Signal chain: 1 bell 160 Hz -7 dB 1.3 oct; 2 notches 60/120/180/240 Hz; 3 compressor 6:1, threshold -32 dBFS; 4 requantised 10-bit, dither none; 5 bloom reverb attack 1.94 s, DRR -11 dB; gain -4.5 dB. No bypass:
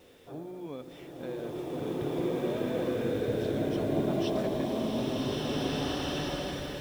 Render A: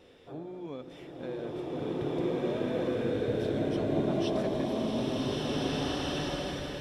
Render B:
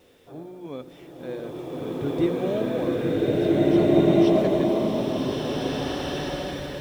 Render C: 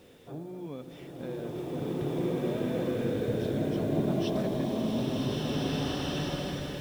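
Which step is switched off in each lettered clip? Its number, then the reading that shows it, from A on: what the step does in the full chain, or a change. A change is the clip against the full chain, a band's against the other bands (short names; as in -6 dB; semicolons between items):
4, distortion -26 dB; 3, mean gain reduction 3.0 dB; 1, 125 Hz band +4.5 dB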